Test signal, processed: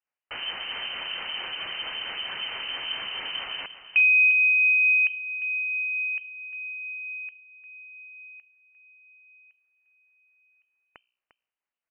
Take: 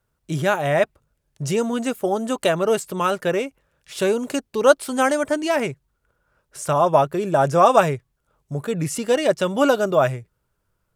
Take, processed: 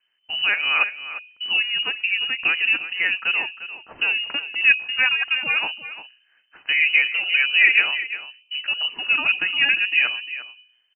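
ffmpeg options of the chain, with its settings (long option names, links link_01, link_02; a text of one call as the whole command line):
ffmpeg -i in.wav -filter_complex "[0:a]bandreject=frequency=61.67:width_type=h:width=4,bandreject=frequency=123.34:width_type=h:width=4,bandreject=frequency=185.01:width_type=h:width=4,bandreject=frequency=246.68:width_type=h:width=4,bandreject=frequency=308.35:width_type=h:width=4,bandreject=frequency=370.02:width_type=h:width=4,bandreject=frequency=431.69:width_type=h:width=4,bandreject=frequency=493.36:width_type=h:width=4,bandreject=frequency=555.03:width_type=h:width=4,bandreject=frequency=616.7:width_type=h:width=4,bandreject=frequency=678.37:width_type=h:width=4,bandreject=frequency=740.04:width_type=h:width=4,asplit=2[link_01][link_02];[link_02]acompressor=threshold=-33dB:ratio=6,volume=-1dB[link_03];[link_01][link_03]amix=inputs=2:normalize=0,acrossover=split=630[link_04][link_05];[link_04]aeval=exprs='val(0)*(1-0.5/2+0.5/2*cos(2*PI*4.5*n/s))':channel_layout=same[link_06];[link_05]aeval=exprs='val(0)*(1-0.5/2-0.5/2*cos(2*PI*4.5*n/s))':channel_layout=same[link_07];[link_06][link_07]amix=inputs=2:normalize=0,aecho=1:1:350:0.224,lowpass=frequency=2600:width_type=q:width=0.5098,lowpass=frequency=2600:width_type=q:width=0.6013,lowpass=frequency=2600:width_type=q:width=0.9,lowpass=frequency=2600:width_type=q:width=2.563,afreqshift=-3100" out.wav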